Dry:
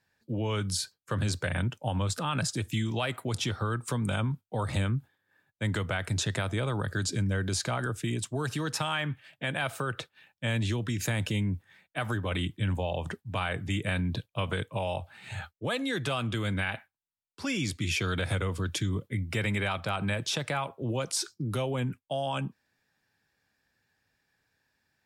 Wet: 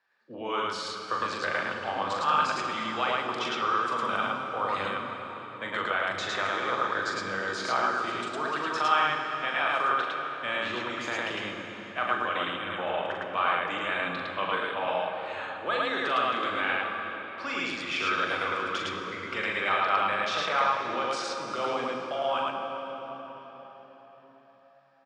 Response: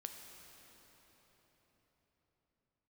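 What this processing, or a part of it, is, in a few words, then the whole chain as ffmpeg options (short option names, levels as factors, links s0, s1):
station announcement: -filter_complex "[0:a]highpass=460,lowpass=3700,equalizer=f=1200:t=o:w=0.45:g=9.5,aecho=1:1:40.82|107.9:0.562|1[s0];[1:a]atrim=start_sample=2205[s1];[s0][s1]afir=irnorm=-1:irlink=0,lowpass=8600,volume=1.68"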